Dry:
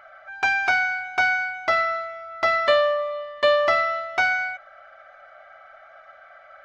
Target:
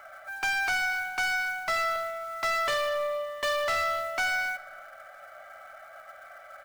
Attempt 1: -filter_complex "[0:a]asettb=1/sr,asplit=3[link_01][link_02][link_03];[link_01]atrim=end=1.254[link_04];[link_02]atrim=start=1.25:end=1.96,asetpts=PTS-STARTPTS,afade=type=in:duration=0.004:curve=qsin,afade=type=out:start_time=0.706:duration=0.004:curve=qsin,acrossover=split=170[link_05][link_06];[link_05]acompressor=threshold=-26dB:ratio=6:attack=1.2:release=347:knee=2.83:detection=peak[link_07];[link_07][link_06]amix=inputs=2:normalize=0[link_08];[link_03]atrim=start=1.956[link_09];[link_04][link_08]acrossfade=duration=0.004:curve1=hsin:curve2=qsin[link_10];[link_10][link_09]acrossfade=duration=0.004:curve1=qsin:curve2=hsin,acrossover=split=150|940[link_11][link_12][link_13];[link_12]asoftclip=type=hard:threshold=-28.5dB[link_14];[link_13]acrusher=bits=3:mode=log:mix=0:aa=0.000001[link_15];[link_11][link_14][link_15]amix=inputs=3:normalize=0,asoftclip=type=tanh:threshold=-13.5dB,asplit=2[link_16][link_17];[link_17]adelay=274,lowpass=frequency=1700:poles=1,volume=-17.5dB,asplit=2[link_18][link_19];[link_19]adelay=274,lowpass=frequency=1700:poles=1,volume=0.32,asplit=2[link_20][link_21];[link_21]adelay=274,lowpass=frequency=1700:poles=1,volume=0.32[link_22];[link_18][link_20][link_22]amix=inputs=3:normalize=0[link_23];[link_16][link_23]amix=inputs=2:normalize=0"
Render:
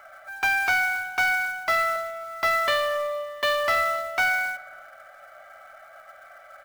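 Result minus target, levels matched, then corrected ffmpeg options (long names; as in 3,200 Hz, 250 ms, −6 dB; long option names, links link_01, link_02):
soft clipping: distortion −13 dB
-filter_complex "[0:a]asettb=1/sr,asplit=3[link_01][link_02][link_03];[link_01]atrim=end=1.254[link_04];[link_02]atrim=start=1.25:end=1.96,asetpts=PTS-STARTPTS,afade=type=in:duration=0.004:curve=qsin,afade=type=out:start_time=0.706:duration=0.004:curve=qsin,acrossover=split=170[link_05][link_06];[link_05]acompressor=threshold=-26dB:ratio=6:attack=1.2:release=347:knee=2.83:detection=peak[link_07];[link_07][link_06]amix=inputs=2:normalize=0[link_08];[link_03]atrim=start=1.956[link_09];[link_04][link_08]acrossfade=duration=0.004:curve1=hsin:curve2=qsin[link_10];[link_10][link_09]acrossfade=duration=0.004:curve1=qsin:curve2=hsin,acrossover=split=150|940[link_11][link_12][link_13];[link_12]asoftclip=type=hard:threshold=-28.5dB[link_14];[link_13]acrusher=bits=3:mode=log:mix=0:aa=0.000001[link_15];[link_11][link_14][link_15]amix=inputs=3:normalize=0,asoftclip=type=tanh:threshold=-24.5dB,asplit=2[link_16][link_17];[link_17]adelay=274,lowpass=frequency=1700:poles=1,volume=-17.5dB,asplit=2[link_18][link_19];[link_19]adelay=274,lowpass=frequency=1700:poles=1,volume=0.32,asplit=2[link_20][link_21];[link_21]adelay=274,lowpass=frequency=1700:poles=1,volume=0.32[link_22];[link_18][link_20][link_22]amix=inputs=3:normalize=0[link_23];[link_16][link_23]amix=inputs=2:normalize=0"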